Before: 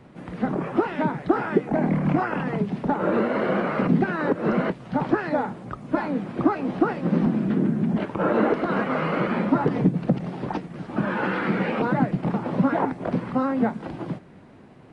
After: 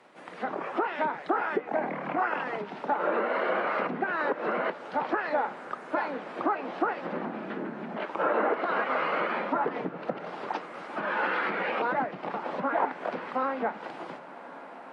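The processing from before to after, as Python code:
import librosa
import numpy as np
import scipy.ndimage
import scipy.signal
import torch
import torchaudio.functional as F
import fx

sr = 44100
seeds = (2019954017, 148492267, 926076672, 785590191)

y = fx.env_lowpass_down(x, sr, base_hz=2100.0, full_db=-16.5)
y = scipy.signal.sosfilt(scipy.signal.butter(2, 590.0, 'highpass', fs=sr, output='sos'), y)
y = fx.echo_diffused(y, sr, ms=1834, feedback_pct=40, wet_db=-15)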